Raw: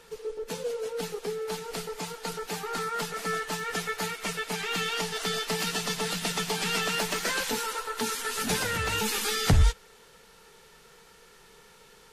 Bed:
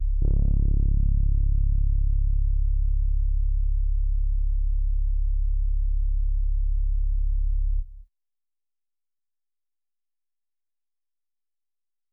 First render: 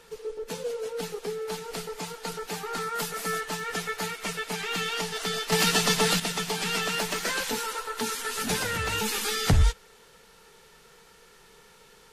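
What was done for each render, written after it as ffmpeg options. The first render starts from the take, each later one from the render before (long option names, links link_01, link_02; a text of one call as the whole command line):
ffmpeg -i in.wav -filter_complex "[0:a]asettb=1/sr,asplit=3[link_01][link_02][link_03];[link_01]atrim=end=2.954[link_04];[link_02]atrim=start=2.95:end=3.41,asetpts=PTS-STARTPTS,afade=type=in:duration=0.004:curve=qsin,afade=type=out:start_time=0.456:duration=0.004:curve=qsin,highshelf=frequency=9900:gain=12[link_05];[link_03]atrim=start=3.406[link_06];[link_04][link_05]acrossfade=duration=0.004:curve1=hsin:curve2=qsin[link_07];[link_07][link_06]acrossfade=duration=0.004:curve1=qsin:curve2=hsin,asettb=1/sr,asplit=3[link_08][link_09][link_10];[link_08]atrim=end=5.524[link_11];[link_09]atrim=start=5.52:end=6.2,asetpts=PTS-STARTPTS,afade=type=in:duration=0.004:curve=qsin,afade=type=out:start_time=0.676:duration=0.004:curve=qsin,acontrast=90[link_12];[link_10]atrim=start=6.196[link_13];[link_11][link_12]acrossfade=duration=0.004:curve1=hsin:curve2=qsin[link_14];[link_14][link_13]acrossfade=duration=0.004:curve1=qsin:curve2=hsin" out.wav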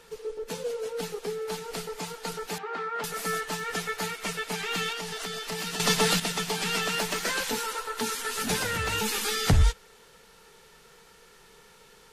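ffmpeg -i in.wav -filter_complex "[0:a]asettb=1/sr,asplit=3[link_01][link_02][link_03];[link_01]atrim=end=2.584[link_04];[link_02]atrim=start=2.58:end=3.04,asetpts=PTS-STARTPTS,afade=type=in:duration=0.004:curve=qsin,afade=type=out:start_time=0.456:duration=0.004:curve=qsin,highpass=290,lowpass=2300[link_05];[link_03]atrim=start=3.036[link_06];[link_04][link_05]acrossfade=duration=0.004:curve1=hsin:curve2=qsin[link_07];[link_07][link_06]acrossfade=duration=0.004:curve1=qsin:curve2=hsin,asettb=1/sr,asplit=3[link_08][link_09][link_10];[link_08]atrim=end=4.924[link_11];[link_09]atrim=start=4.92:end=5.8,asetpts=PTS-STARTPTS,afade=type=in:duration=0.004:curve=qsin,afade=type=out:start_time=0.876:duration=0.004:curve=qsin,acompressor=threshold=-30dB:ratio=6:attack=3.2:release=140:knee=1:detection=peak[link_12];[link_10]atrim=start=5.796[link_13];[link_11][link_12]acrossfade=duration=0.004:curve1=hsin:curve2=qsin[link_14];[link_14][link_13]acrossfade=duration=0.004:curve1=qsin:curve2=hsin,asettb=1/sr,asplit=3[link_15][link_16][link_17];[link_15]atrim=end=8.294[link_18];[link_16]atrim=start=8.29:end=8.93,asetpts=PTS-STARTPTS,afade=type=in:duration=0.004:curve=qsin,afade=type=out:start_time=0.636:duration=0.004:curve=qsin,aeval=exprs='val(0)*gte(abs(val(0)),0.00282)':channel_layout=same[link_19];[link_17]atrim=start=8.926[link_20];[link_18][link_19]acrossfade=duration=0.004:curve1=hsin:curve2=qsin[link_21];[link_21][link_20]acrossfade=duration=0.004:curve1=qsin:curve2=hsin" out.wav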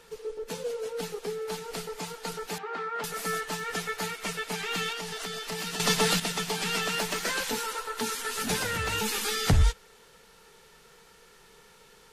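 ffmpeg -i in.wav -af "volume=-1dB" out.wav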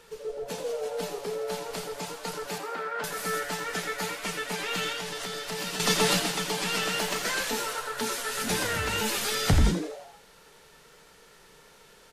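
ffmpeg -i in.wav -filter_complex "[0:a]asplit=2[link_01][link_02];[link_02]adelay=32,volume=-12.5dB[link_03];[link_01][link_03]amix=inputs=2:normalize=0,asplit=2[link_04][link_05];[link_05]asplit=6[link_06][link_07][link_08][link_09][link_10][link_11];[link_06]adelay=83,afreqshift=130,volume=-9dB[link_12];[link_07]adelay=166,afreqshift=260,volume=-14.5dB[link_13];[link_08]adelay=249,afreqshift=390,volume=-20dB[link_14];[link_09]adelay=332,afreqshift=520,volume=-25.5dB[link_15];[link_10]adelay=415,afreqshift=650,volume=-31.1dB[link_16];[link_11]adelay=498,afreqshift=780,volume=-36.6dB[link_17];[link_12][link_13][link_14][link_15][link_16][link_17]amix=inputs=6:normalize=0[link_18];[link_04][link_18]amix=inputs=2:normalize=0" out.wav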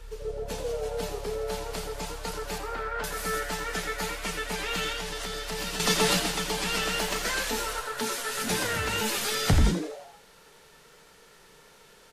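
ffmpeg -i in.wav -i bed.wav -filter_complex "[1:a]volume=-19.5dB[link_01];[0:a][link_01]amix=inputs=2:normalize=0" out.wav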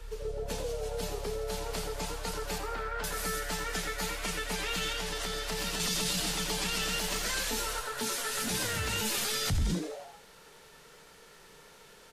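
ffmpeg -i in.wav -filter_complex "[0:a]acrossover=split=190|3000[link_01][link_02][link_03];[link_02]acompressor=threshold=-34dB:ratio=6[link_04];[link_01][link_04][link_03]amix=inputs=3:normalize=0,alimiter=limit=-22dB:level=0:latency=1:release=15" out.wav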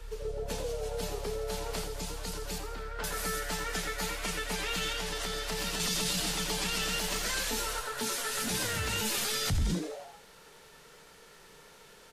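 ffmpeg -i in.wav -filter_complex "[0:a]asettb=1/sr,asplit=3[link_01][link_02][link_03];[link_01]atrim=end=1.844[link_04];[link_02]atrim=start=1.84:end=2.99,asetpts=PTS-STARTPTS,afade=type=in:duration=0.004:curve=qsin,afade=type=out:start_time=1.146:duration=0.004:curve=qsin,acrossover=split=400|3000[link_05][link_06][link_07];[link_06]acompressor=threshold=-43dB:ratio=6:attack=3.2:release=140:knee=2.83:detection=peak[link_08];[link_05][link_08][link_07]amix=inputs=3:normalize=0[link_09];[link_03]atrim=start=2.986[link_10];[link_04][link_09]acrossfade=duration=0.004:curve1=hsin:curve2=qsin[link_11];[link_11][link_10]acrossfade=duration=0.004:curve1=qsin:curve2=hsin" out.wav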